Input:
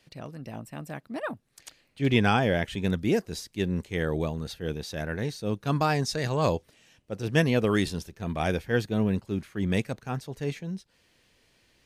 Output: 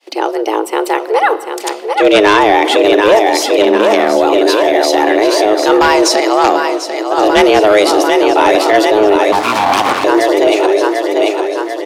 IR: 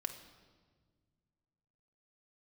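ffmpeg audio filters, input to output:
-filter_complex "[0:a]agate=range=-33dB:threshold=-57dB:ratio=3:detection=peak,aecho=1:1:742|1484|2226|2968|3710|4452|5194:0.422|0.24|0.137|0.0781|0.0445|0.0254|0.0145,asettb=1/sr,asplit=3[a][b][c];[a]atrim=end=6.204[d];[b]atrim=start=6.2:end=7.18,asetpts=PTS-STARTPTS,afade=t=in:d=0.004:c=qsin,afade=t=out:st=0.976:d=0.004:c=qsin,aeval=exprs='0.299*(cos(1*acos(clip(val(0)/0.299,-1,1)))-cos(1*PI/2))+0.0596*(cos(3*acos(clip(val(0)/0.299,-1,1)))-cos(3*PI/2))':c=same[e];[c]atrim=start=7.176[f];[d][e]acrossfade=d=0.004:c1=hsin:c2=qsin[g];[g][f]acrossfade=d=0.004:c1=qsin:c2=hsin,highshelf=f=4.7k:g=-5.5,asettb=1/sr,asplit=3[h][i][j];[h]atrim=end=3.624[k];[i]atrim=start=3.62:end=4.16,asetpts=PTS-STARTPTS,afade=t=in:d=0.004:c=qsin,afade=t=out:st=0.536:d=0.004:c=qsin,aeval=exprs='(tanh(14.1*val(0)+0.55)-tanh(0.55))/14.1':c=same[l];[j]atrim=start=4.156[m];[k][l]acrossfade=d=0.004:c1=hsin:c2=qsin[n];[n][m]acrossfade=d=0.004:c1=qsin:c2=hsin,afreqshift=210,asettb=1/sr,asplit=3[o][p][q];[o]atrim=end=9.324[r];[p]atrim=start=9.32:end=10.04,asetpts=PTS-STARTPTS,afade=t=in:d=0.004:c=qsin,afade=t=out:st=0.716:d=0.004:c=qsin,aeval=exprs='abs(val(0))':c=same[s];[q]atrim=start=10.036[t];[r][s]acrossfade=d=0.004:c1=hsin:c2=qsin[u];[u][t]acrossfade=d=0.004:c1=qsin:c2=hsin,highpass=370,asplit=2[v][w];[w]equalizer=f=1.8k:w=2.4:g=-8[x];[1:a]atrim=start_sample=2205[y];[x][y]afir=irnorm=-1:irlink=0,volume=-2dB[z];[v][z]amix=inputs=2:normalize=0,aeval=exprs='0.891*sin(PI/2*3.55*val(0)/0.891)':c=same,alimiter=level_in=8dB:limit=-1dB:release=50:level=0:latency=1,volume=-1dB"

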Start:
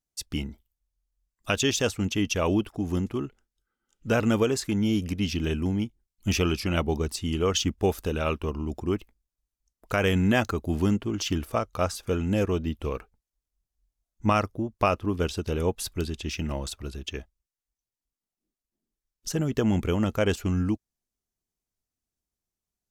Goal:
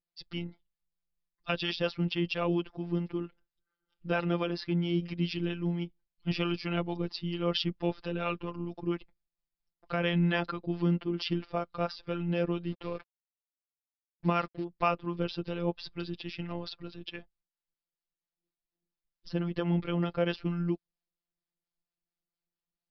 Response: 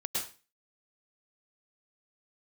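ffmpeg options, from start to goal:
-filter_complex "[0:a]asettb=1/sr,asplit=3[a][b][c];[a]atrim=end=12.674[d];[b]atrim=start=12.67:end=14.64,asetpts=PTS-STARTPTS,afade=t=in:d=0.004:c=qsin,afade=t=out:st=1.966:d=0.004:c=qsin,acrusher=bits=6:mix=0:aa=0.5[e];[c]atrim=start=14.636[f];[d][e]acrossfade=d=0.004:c1=hsin:c2=qsin[g];[g][f]acrossfade=d=0.004:c1=qsin:c2=hsin,afftfilt=real='hypot(re,im)*cos(PI*b)':imag='0':win_size=1024:overlap=0.75,aresample=11025,aresample=44100,acrossover=split=600[h][i];[h]aeval=exprs='val(0)*(1-0.5/2+0.5/2*cos(2*PI*4.4*n/s))':c=same[j];[i]aeval=exprs='val(0)*(1-0.5/2-0.5/2*cos(2*PI*4.4*n/s))':c=same[k];[j][k]amix=inputs=2:normalize=0,volume=1dB"

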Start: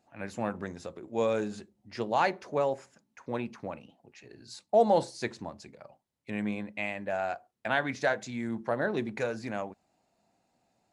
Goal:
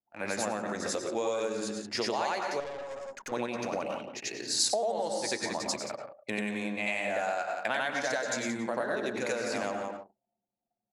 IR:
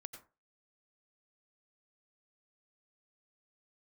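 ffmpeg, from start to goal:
-filter_complex "[0:a]asplit=2[a][b];[b]highshelf=f=6.2k:g=4.5[c];[1:a]atrim=start_sample=2205,asetrate=40131,aresample=44100,adelay=91[d];[c][d]afir=irnorm=-1:irlink=0,volume=9.5dB[e];[a][e]amix=inputs=2:normalize=0,dynaudnorm=f=370:g=9:m=5dB,highpass=f=160:p=1,aecho=1:1:176:0.224,acompressor=threshold=-31dB:ratio=20,asettb=1/sr,asplit=3[f][g][h];[f]atrim=end=2.604[i];[g]atrim=start=2.6:end=3.32,asetpts=PTS-STARTPTS,afade=t=in:d=0.004:c=qsin,afade=t=out:st=0.716:d=0.004:c=qsin,aeval=exprs='(tanh(100*val(0)+0.5)-tanh(0.5))/100':c=same[j];[h]atrim=start=3.316[k];[i][j]acrossfade=d=0.004:c1=hsin:c2=qsin[l];[l][k]acrossfade=d=0.004:c1=qsin:c2=hsin,anlmdn=0.00398,bass=f=250:g=-7,treble=f=4k:g=9,volume=4dB"

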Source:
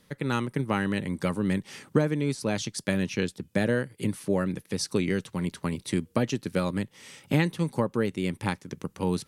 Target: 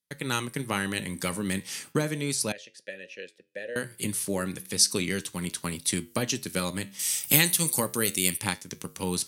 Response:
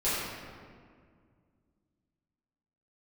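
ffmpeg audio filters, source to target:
-filter_complex "[0:a]asettb=1/sr,asplit=3[a][b][c];[a]atrim=end=6.994[d];[b]atrim=start=6.99:end=8.38,asetpts=PTS-STARTPTS,afade=t=in:d=0.004:c=qsin,afade=t=out:st=1.386:d=0.004:c=qsin,aemphasis=mode=production:type=75kf[e];[c]atrim=start=8.376[f];[d][e]acrossfade=d=0.004:c1=hsin:c2=qsin[g];[g][f]acrossfade=d=0.004:c1=qsin:c2=hsin,agate=range=-33dB:threshold=-52dB:ratio=16:detection=peak,flanger=delay=9.4:depth=4.7:regen=-79:speed=0.34:shape=triangular,crystalizer=i=6.5:c=0,asettb=1/sr,asplit=3[h][i][j];[h]atrim=end=2.524[k];[i]atrim=start=2.52:end=3.76,asetpts=PTS-STARTPTS,afade=t=in:d=0.004:c=qsin,afade=t=out:st=1.236:d=0.004:c=qsin,asplit=3[l][m][n];[l]bandpass=f=530:t=q:w=8,volume=0dB[o];[m]bandpass=f=1.84k:t=q:w=8,volume=-6dB[p];[n]bandpass=f=2.48k:t=q:w=8,volume=-9dB[q];[o][p][q]amix=inputs=3:normalize=0[r];[j]atrim=start=3.756[s];[k][r]acrossfade=d=0.004:c1=hsin:c2=qsin[t];[t][s]acrossfade=d=0.004:c1=qsin:c2=hsin"

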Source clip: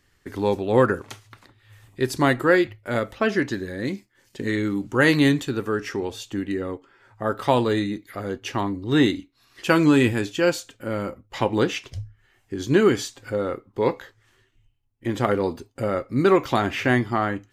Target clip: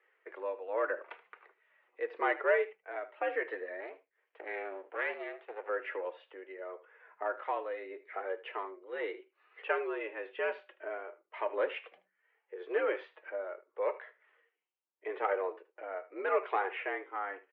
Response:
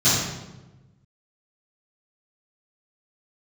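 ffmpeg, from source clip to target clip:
-filter_complex "[0:a]asplit=2[a][b];[b]acompressor=threshold=-33dB:ratio=6,volume=-1.5dB[c];[a][c]amix=inputs=2:normalize=0,tremolo=f=0.85:d=0.6,asoftclip=type=tanh:threshold=-8.5dB,flanger=delay=2.5:depth=2.5:regen=-37:speed=0.72:shape=triangular,asettb=1/sr,asplit=3[d][e][f];[d]atrim=end=3.804[g];[e]atrim=start=3.8:end=5.69,asetpts=PTS-STARTPTS,afade=t=in:d=0.004:c=qsin,afade=t=out:st=1.886:d=0.004:c=qsin,aeval=exprs='max(val(0),0)':c=same[h];[f]atrim=start=5.686[i];[g][h]acrossfade=d=0.004:c1=hsin:c2=qsin[j];[j][i]acrossfade=d=0.004:c1=qsin:c2=hsin,aecho=1:1:77:0.141,highpass=f=360:t=q:w=0.5412,highpass=f=360:t=q:w=1.307,lowpass=f=2.5k:t=q:w=0.5176,lowpass=f=2.5k:t=q:w=0.7071,lowpass=f=2.5k:t=q:w=1.932,afreqshift=83,volume=-4.5dB"

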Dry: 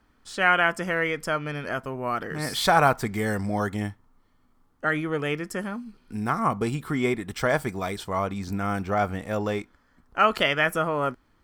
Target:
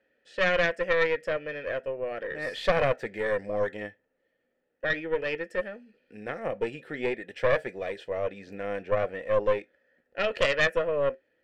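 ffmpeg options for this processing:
-filter_complex "[0:a]flanger=delay=5.4:depth=1.2:regen=-74:speed=0.41:shape=sinusoidal,asplit=3[a][b][c];[a]bandpass=f=530:t=q:w=8,volume=0dB[d];[b]bandpass=f=1.84k:t=q:w=8,volume=-6dB[e];[c]bandpass=f=2.48k:t=q:w=8,volume=-9dB[f];[d][e][f]amix=inputs=3:normalize=0,aeval=exprs='0.0841*(cos(1*acos(clip(val(0)/0.0841,-1,1)))-cos(1*PI/2))+0.0237*(cos(4*acos(clip(val(0)/0.0841,-1,1)))-cos(4*PI/2))+0.00944*(cos(5*acos(clip(val(0)/0.0841,-1,1)))-cos(5*PI/2))':c=same,volume=9dB"

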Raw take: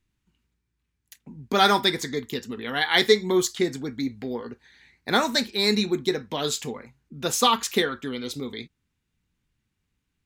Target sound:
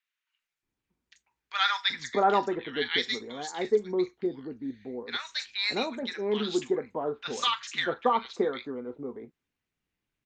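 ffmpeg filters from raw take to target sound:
-filter_complex "[0:a]bass=f=250:g=-13,treble=f=4k:g=-7,aresample=16000,aresample=44100,asettb=1/sr,asplit=3[a][b][c];[a]atrim=end=2.624[d];[b]atrim=start=2.62:end=5.4,asetpts=PTS-STARTPTS,afade=t=in:d=0.004:c=qsin,afade=t=out:st=2.776:d=0.004:c=qsin,equalizer=f=1.1k:w=0.57:g=-8.5[e];[c]atrim=start=5.396[f];[d][e]acrossfade=d=0.004:c1=hsin:c2=qsin[g];[g][f]acrossfade=d=0.004:c1=qsin:c2=hsin,acrossover=split=1200|5300[h][i][j];[j]adelay=40[k];[h]adelay=630[l];[l][i][k]amix=inputs=3:normalize=0" -ar 48000 -c:a libopus -b:a 48k

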